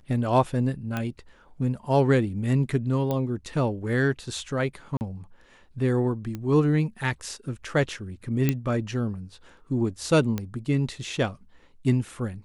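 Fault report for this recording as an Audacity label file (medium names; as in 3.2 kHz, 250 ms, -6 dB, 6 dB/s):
0.970000	0.970000	pop -15 dBFS
3.110000	3.110000	pop -15 dBFS
4.970000	5.010000	dropout 39 ms
6.350000	6.350000	pop -20 dBFS
8.490000	8.490000	pop -9 dBFS
10.380000	10.380000	pop -15 dBFS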